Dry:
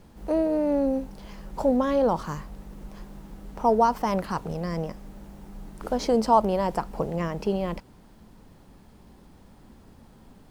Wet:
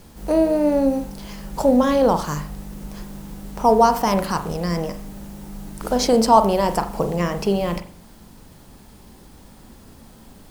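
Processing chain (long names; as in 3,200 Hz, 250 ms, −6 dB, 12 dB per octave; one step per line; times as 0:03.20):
high-shelf EQ 3,800 Hz +11 dB
on a send: convolution reverb, pre-delay 40 ms, DRR 8.5 dB
on the sum: level +5 dB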